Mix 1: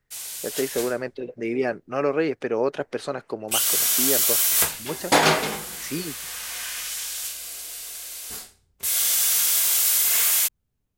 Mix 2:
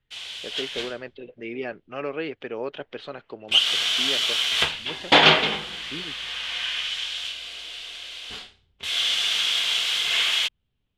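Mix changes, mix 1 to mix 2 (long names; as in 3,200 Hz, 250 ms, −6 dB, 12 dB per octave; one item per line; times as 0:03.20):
speech −8.0 dB
master: add low-pass with resonance 3,200 Hz, resonance Q 4.2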